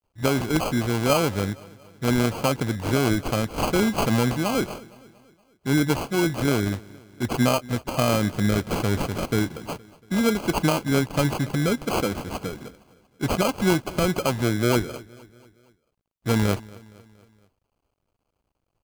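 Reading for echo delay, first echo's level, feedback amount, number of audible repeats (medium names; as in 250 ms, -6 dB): 233 ms, -22.0 dB, 54%, 3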